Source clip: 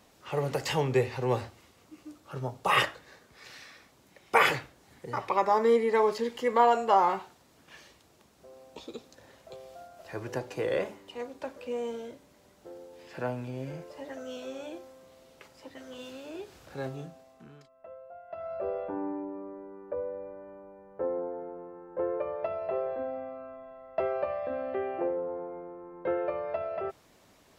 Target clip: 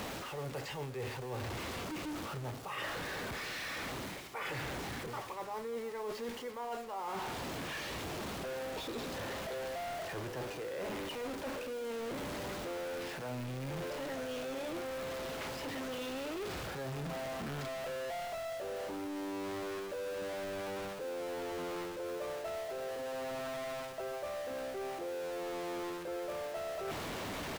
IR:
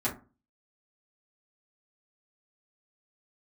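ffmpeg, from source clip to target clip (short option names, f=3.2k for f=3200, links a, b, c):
-filter_complex "[0:a]aeval=exprs='val(0)+0.5*0.0473*sgn(val(0))':c=same,areverse,acompressor=threshold=-32dB:ratio=10,areverse,acrusher=bits=8:mix=0:aa=0.000001,acrossover=split=4100[a][b];[b]acompressor=threshold=-43dB:ratio=4:attack=1:release=60[c];[a][c]amix=inputs=2:normalize=0,aecho=1:1:345|690|1035|1380:0.112|0.0572|0.0292|0.0149,volume=-6dB"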